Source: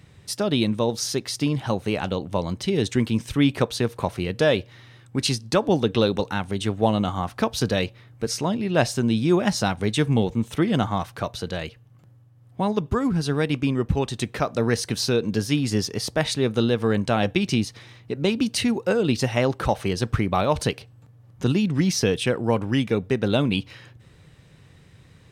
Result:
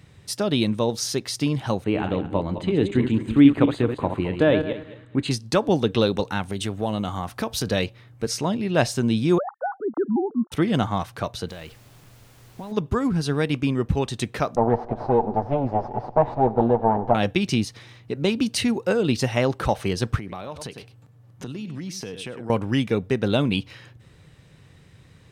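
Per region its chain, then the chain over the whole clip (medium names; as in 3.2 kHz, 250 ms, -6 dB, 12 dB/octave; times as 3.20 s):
1.84–5.31 s: backward echo that repeats 107 ms, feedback 42%, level -7 dB + boxcar filter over 8 samples + peaking EQ 300 Hz +9 dB 0.22 oct
6.43–7.67 s: compression 2:1, threshold -24 dBFS + treble shelf 10 kHz +8 dB
9.38–10.52 s: formants replaced by sine waves + steep low-pass 1.4 kHz 72 dB/octave + bass shelf 210 Hz -9 dB
11.48–12.71 s: compression 5:1, threshold -33 dBFS + added noise pink -53 dBFS
14.56–17.15 s: comb filter that takes the minimum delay 8.2 ms + resonant low-pass 810 Hz + thinning echo 94 ms, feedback 73%, high-pass 180 Hz, level -20.5 dB
20.17–22.50 s: high-pass 92 Hz + delay 99 ms -14.5 dB + compression 4:1, threshold -32 dBFS
whole clip: none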